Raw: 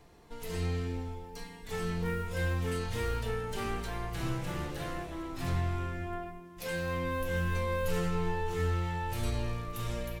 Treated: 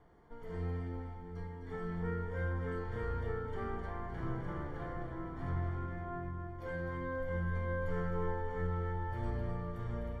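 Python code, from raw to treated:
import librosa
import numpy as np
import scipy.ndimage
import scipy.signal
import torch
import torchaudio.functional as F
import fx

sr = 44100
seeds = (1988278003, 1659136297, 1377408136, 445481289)

p1 = fx.quant_dither(x, sr, seeds[0], bits=10, dither='none')
p2 = scipy.signal.savgol_filter(p1, 41, 4, mode='constant')
p3 = p2 + fx.echo_split(p2, sr, split_hz=340.0, low_ms=731, high_ms=257, feedback_pct=52, wet_db=-7.0, dry=0)
y = p3 * librosa.db_to_amplitude(-5.0)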